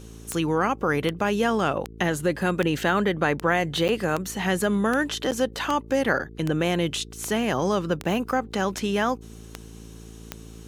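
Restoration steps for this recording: de-click; de-hum 55.6 Hz, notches 8; interpolate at 3.88/5.31/8.03, 8.7 ms

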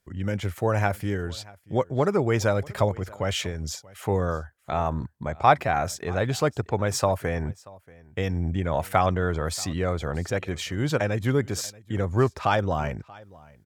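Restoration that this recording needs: inverse comb 0.633 s -23 dB

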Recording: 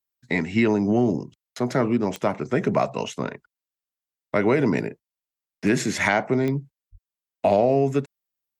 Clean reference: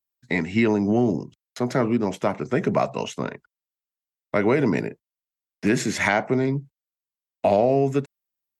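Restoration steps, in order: de-click; de-plosive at 6.91

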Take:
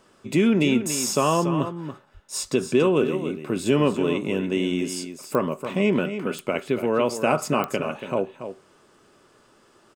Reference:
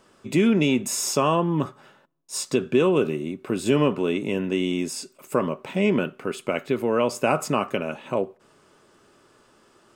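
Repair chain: de-click; 2.13–2.25 HPF 140 Hz 24 dB/oct; inverse comb 0.284 s -10 dB

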